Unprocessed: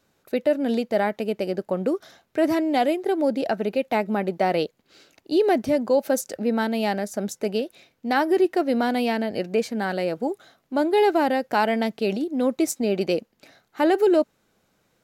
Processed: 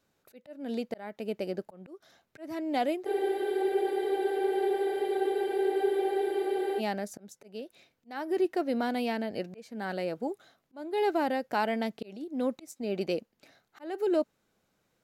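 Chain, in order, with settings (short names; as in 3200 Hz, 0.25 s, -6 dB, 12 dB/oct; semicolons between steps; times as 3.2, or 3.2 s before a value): auto swell 0.368 s; spectral freeze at 3.08, 3.72 s; gain -7.5 dB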